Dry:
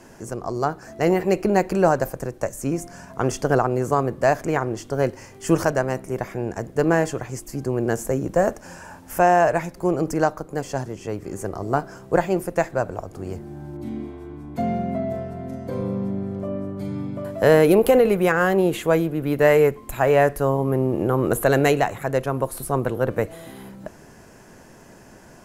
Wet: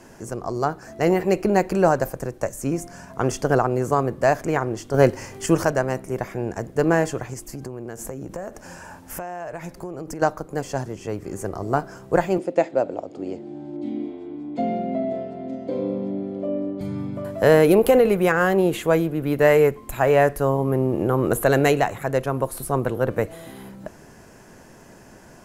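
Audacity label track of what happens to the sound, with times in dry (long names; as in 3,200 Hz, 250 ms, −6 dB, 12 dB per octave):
4.940000	5.460000	clip gain +6 dB
7.330000	10.220000	downward compressor 12 to 1, threshold −28 dBFS
12.380000	16.810000	loudspeaker in its box 230–6,400 Hz, peaks and dips at 290 Hz +9 dB, 550 Hz +5 dB, 1,100 Hz −8 dB, 1,600 Hz −9 dB, 3,300 Hz +3 dB, 5,800 Hz −8 dB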